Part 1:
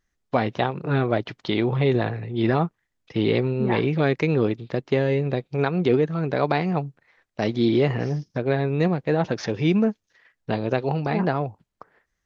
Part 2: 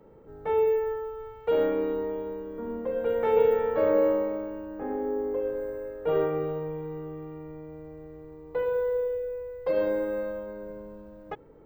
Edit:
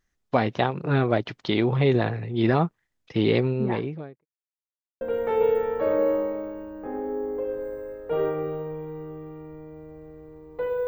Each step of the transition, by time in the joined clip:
part 1
0:03.36–0:04.26: fade out and dull
0:04.26–0:05.01: silence
0:05.01: continue with part 2 from 0:02.97

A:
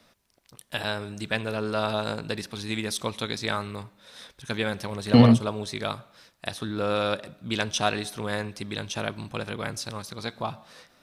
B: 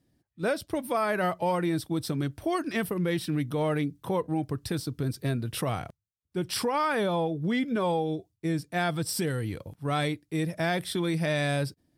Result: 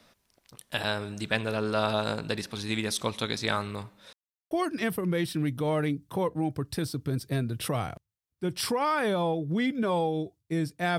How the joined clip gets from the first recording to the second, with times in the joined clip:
A
0:04.13–0:04.51: silence
0:04.51: continue with B from 0:02.44

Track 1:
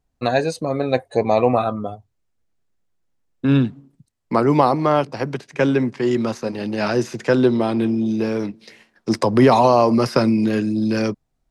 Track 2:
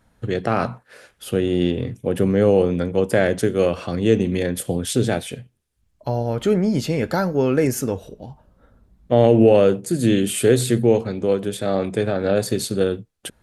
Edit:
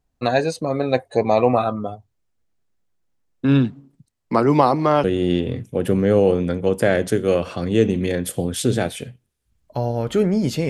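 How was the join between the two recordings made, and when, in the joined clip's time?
track 1
0:05.04: continue with track 2 from 0:01.35

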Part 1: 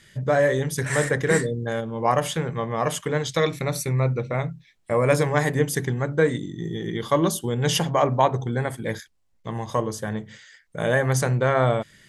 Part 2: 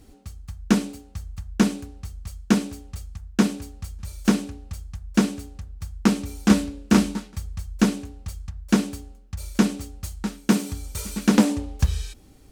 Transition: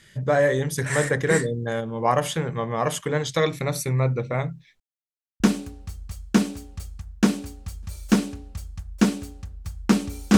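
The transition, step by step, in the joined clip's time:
part 1
0:04.80–0:05.40: silence
0:05.40: continue with part 2 from 0:01.56

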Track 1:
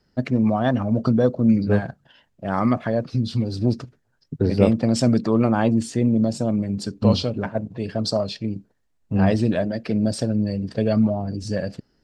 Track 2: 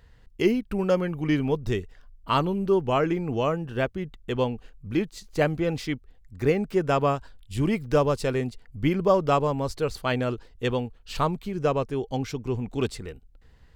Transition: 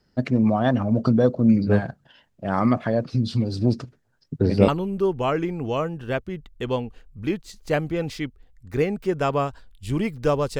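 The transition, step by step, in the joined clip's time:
track 1
0:04.68: continue with track 2 from 0:02.36

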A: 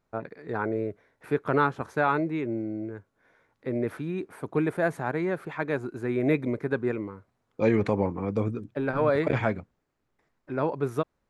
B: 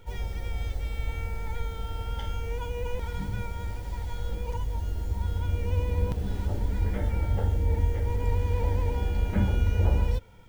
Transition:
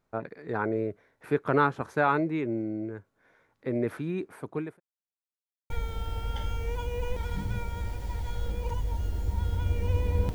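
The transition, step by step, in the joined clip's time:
A
0:04.07–0:04.80: fade out equal-power
0:04.80–0:05.70: silence
0:05.70: continue with B from 0:01.53

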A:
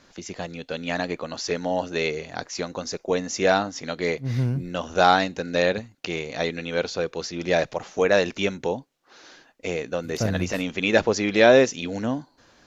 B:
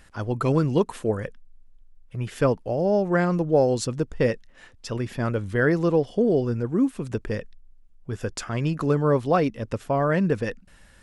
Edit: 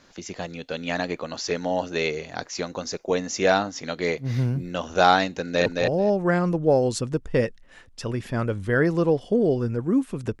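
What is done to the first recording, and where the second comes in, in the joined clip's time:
A
0:05.33–0:05.66: delay throw 220 ms, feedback 10%, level −3 dB
0:05.66: continue with B from 0:02.52

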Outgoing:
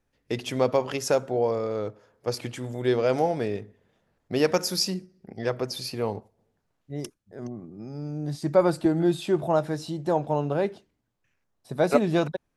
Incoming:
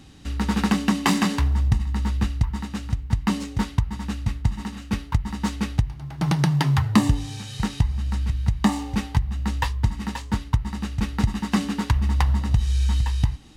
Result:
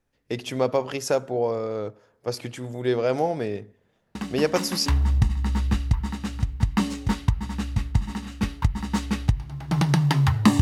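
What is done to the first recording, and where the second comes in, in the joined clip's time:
outgoing
0:04.15: mix in incoming from 0:00.65 0.71 s −11 dB
0:04.86: continue with incoming from 0:01.36

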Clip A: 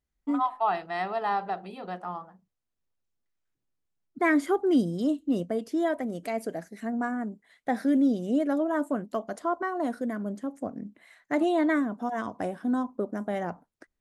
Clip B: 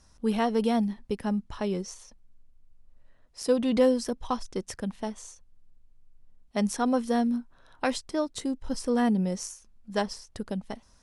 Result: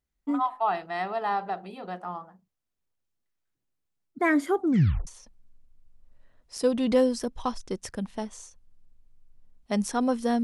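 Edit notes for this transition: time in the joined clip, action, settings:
clip A
0:04.60: tape stop 0.47 s
0:05.07: continue with clip B from 0:01.92

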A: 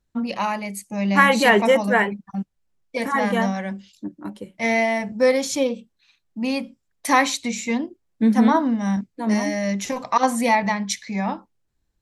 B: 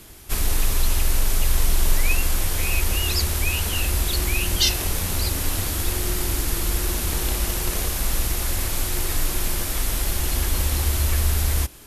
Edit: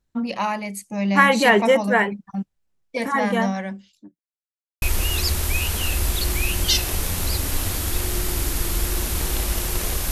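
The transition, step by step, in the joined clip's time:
A
0:03.59–0:04.19: fade out linear
0:04.19–0:04.82: silence
0:04.82: continue with B from 0:02.74

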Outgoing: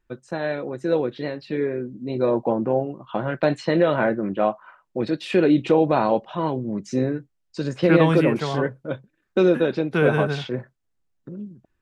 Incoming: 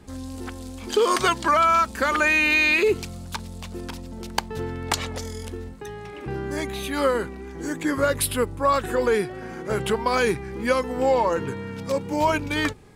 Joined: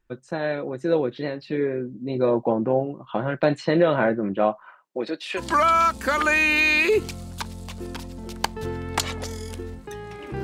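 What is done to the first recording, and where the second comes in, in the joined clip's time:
outgoing
0:04.63–0:05.42: high-pass filter 170 Hz → 740 Hz
0:05.39: continue with incoming from 0:01.33, crossfade 0.06 s

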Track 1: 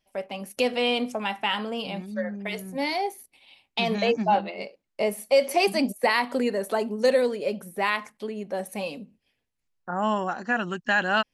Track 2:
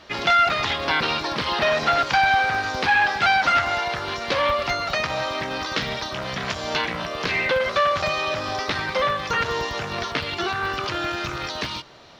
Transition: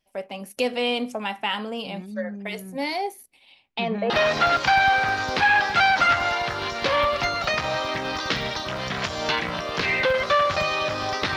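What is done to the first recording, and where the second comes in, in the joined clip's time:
track 1
0:03.52–0:04.10: low-pass filter 8,100 Hz → 1,200 Hz
0:04.10: continue with track 2 from 0:01.56

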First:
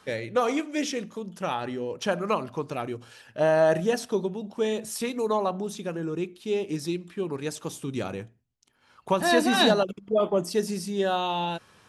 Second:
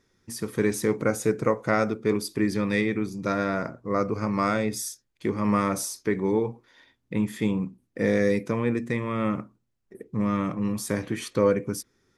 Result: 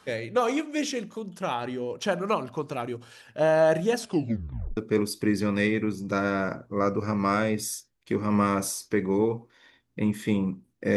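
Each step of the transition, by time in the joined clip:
first
0:04.01: tape stop 0.76 s
0:04.77: continue with second from 0:01.91

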